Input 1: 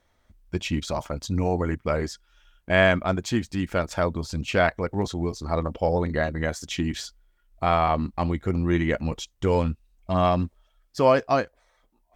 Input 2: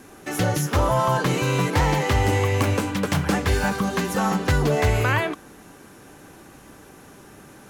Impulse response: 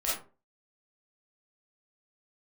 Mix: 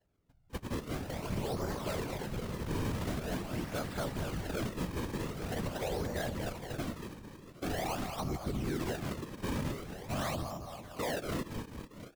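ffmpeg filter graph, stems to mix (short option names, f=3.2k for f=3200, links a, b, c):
-filter_complex "[0:a]volume=-4dB,asplit=3[a][b][c];[b]volume=-10.5dB[d];[1:a]alimiter=limit=-19dB:level=0:latency=1,adelay=500,volume=-7.5dB,asplit=2[e][f];[f]volume=-4.5dB[g];[c]apad=whole_len=361220[h];[e][h]sidechaincompress=threshold=-31dB:ratio=8:attack=8.9:release=390[i];[d][g]amix=inputs=2:normalize=0,aecho=0:1:226|452|678|904|1130|1356|1582|1808|2034:1|0.59|0.348|0.205|0.121|0.0715|0.0422|0.0249|0.0147[j];[a][i][j]amix=inputs=3:normalize=0,acrusher=samples=36:mix=1:aa=0.000001:lfo=1:lforange=57.6:lforate=0.45,afftfilt=real='hypot(re,im)*cos(2*PI*random(0))':imag='hypot(re,im)*sin(2*PI*random(1))':win_size=512:overlap=0.75,alimiter=level_in=1.5dB:limit=-24dB:level=0:latency=1:release=44,volume=-1.5dB"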